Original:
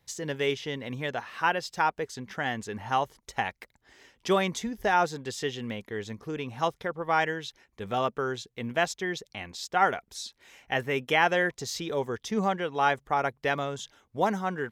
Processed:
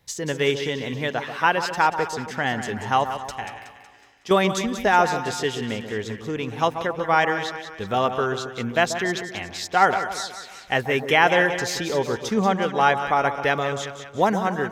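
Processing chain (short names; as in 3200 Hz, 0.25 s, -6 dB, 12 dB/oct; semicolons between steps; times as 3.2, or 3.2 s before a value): 3.36–4.31 resonator 56 Hz, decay 0.77 s, harmonics all, mix 80%; split-band echo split 1200 Hz, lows 0.136 s, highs 0.185 s, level -9 dB; gain +6 dB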